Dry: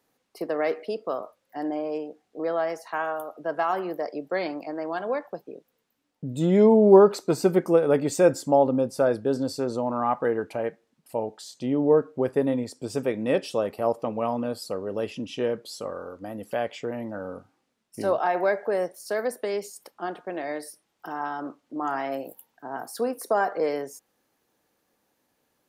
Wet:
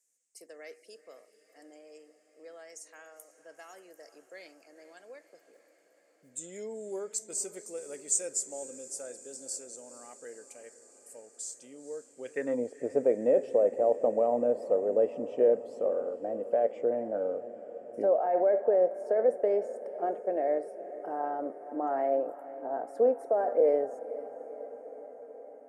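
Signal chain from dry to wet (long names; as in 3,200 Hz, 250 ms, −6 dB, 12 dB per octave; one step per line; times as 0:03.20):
band-pass filter sweep 7,100 Hz → 700 Hz, 0:12.10–0:12.63
in parallel at +3 dB: compressor whose output falls as the input rises −31 dBFS, ratio −1
0:05.53–0:06.29: on the sum: noise that follows the level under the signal 13 dB
graphic EQ with 10 bands 125 Hz +5 dB, 250 Hz +7 dB, 500 Hz +11 dB, 1,000 Hz −9 dB, 2,000 Hz +6 dB, 4,000 Hz −10 dB, 8,000 Hz +12 dB
feedback delay with all-pass diffusion 480 ms, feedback 70%, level −15.5 dB
level −8.5 dB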